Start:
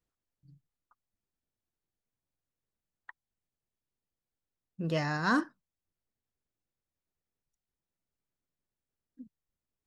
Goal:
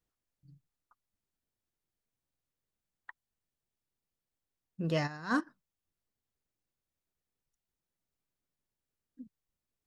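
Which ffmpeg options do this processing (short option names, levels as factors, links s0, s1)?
-filter_complex "[0:a]asplit=3[s0][s1][s2];[s0]afade=t=out:st=5.06:d=0.02[s3];[s1]agate=range=0.251:threshold=0.0562:ratio=16:detection=peak,afade=t=in:st=5.06:d=0.02,afade=t=out:st=5.46:d=0.02[s4];[s2]afade=t=in:st=5.46:d=0.02[s5];[s3][s4][s5]amix=inputs=3:normalize=0"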